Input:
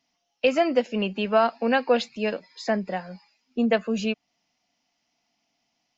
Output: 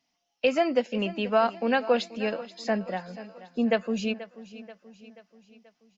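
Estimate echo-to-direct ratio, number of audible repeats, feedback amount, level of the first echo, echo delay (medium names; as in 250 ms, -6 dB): -15.0 dB, 4, 52%, -16.5 dB, 483 ms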